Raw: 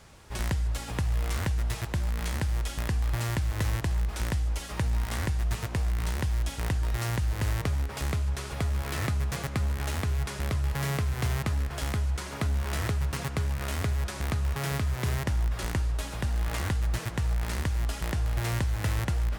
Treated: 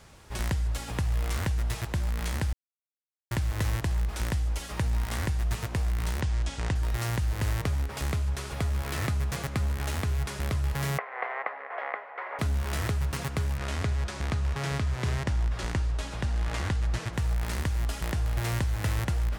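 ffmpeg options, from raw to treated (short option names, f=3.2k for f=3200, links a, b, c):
-filter_complex "[0:a]asplit=3[a][b][c];[a]afade=t=out:st=6.2:d=0.02[d];[b]lowpass=f=8.2k:w=0.5412,lowpass=f=8.2k:w=1.3066,afade=t=in:st=6.2:d=0.02,afade=t=out:st=6.74:d=0.02[e];[c]afade=t=in:st=6.74:d=0.02[f];[d][e][f]amix=inputs=3:normalize=0,asettb=1/sr,asplit=3[g][h][i];[g]atrim=end=10.984[j];[h]atrim=start=10.98:end=12.39,asetpts=PTS-STARTPTS,afade=t=in:d=0.004:c=qsin,afade=t=out:st=1.406:d=0.004:c=qsin,highpass=f=490:w=0.5412,highpass=f=490:w=1.3066,equalizer=f=510:t=q:w=4:g=6,equalizer=f=750:t=q:w=4:g=8,equalizer=f=1.1k:t=q:w=4:g=6,equalizer=f=2k:t=q:w=4:g=10,lowpass=f=2.1k:w=0.5412,lowpass=f=2.1k:w=1.3066[k];[i]atrim=start=12.386[l];[j][k]acrossfade=d=0.004:c1=hsin:c2=qsin[m];[m][l]acrossfade=d=0.004:c1=qsin:c2=hsin,asettb=1/sr,asplit=3[n][o][p];[n]atrim=end=13.574[q];[o]atrim=start=13.57:end=17.13,asetpts=PTS-STARTPTS,afade=t=in:d=0.004:c=qsin,afade=t=out:st=3.556:d=0.004:c=qsin,lowpass=7.6k[r];[p]atrim=start=17.126[s];[q][r]acrossfade=d=0.004:c1=hsin:c2=qsin[t];[t][s]acrossfade=d=0.004:c1=qsin:c2=hsin,asplit=3[u][v][w];[u]atrim=end=2.53,asetpts=PTS-STARTPTS,afade=t=out:st=2.526:d=0.004:c=hsin[x];[v]atrim=start=2.53:end=3.31,asetpts=PTS-STARTPTS,volume=0[y];[w]atrim=start=3.31,asetpts=PTS-STARTPTS,afade=t=in:d=0.004:c=hsin[z];[x][y][z]concat=n=3:v=0:a=1"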